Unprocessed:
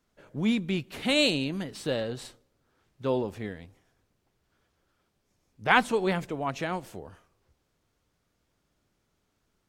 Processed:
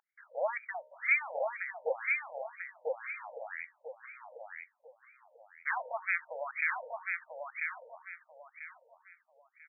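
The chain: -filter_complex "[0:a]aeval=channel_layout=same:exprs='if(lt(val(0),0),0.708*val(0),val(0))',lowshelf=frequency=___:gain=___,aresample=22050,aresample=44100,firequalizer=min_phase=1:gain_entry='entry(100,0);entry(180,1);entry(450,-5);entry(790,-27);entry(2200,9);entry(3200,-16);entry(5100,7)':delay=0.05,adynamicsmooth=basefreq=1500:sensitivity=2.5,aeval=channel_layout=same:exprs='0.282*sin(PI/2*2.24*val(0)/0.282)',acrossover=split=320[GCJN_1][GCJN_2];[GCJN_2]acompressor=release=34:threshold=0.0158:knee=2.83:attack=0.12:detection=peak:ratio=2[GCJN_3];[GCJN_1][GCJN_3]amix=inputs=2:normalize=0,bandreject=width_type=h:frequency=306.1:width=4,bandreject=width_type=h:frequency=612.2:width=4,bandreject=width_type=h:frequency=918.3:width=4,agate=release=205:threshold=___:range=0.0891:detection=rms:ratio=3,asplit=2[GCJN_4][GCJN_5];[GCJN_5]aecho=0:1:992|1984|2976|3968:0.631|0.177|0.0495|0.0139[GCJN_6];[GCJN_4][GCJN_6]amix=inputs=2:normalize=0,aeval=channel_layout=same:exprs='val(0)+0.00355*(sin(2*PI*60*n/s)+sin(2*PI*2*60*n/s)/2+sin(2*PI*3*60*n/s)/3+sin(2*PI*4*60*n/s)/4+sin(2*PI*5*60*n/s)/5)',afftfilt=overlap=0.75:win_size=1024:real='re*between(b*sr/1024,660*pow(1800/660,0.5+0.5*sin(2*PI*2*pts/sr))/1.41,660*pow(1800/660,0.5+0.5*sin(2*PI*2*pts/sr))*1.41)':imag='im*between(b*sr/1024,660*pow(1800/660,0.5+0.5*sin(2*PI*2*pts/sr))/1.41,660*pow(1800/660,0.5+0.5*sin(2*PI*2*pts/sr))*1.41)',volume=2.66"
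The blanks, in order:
300, 10.5, 0.00447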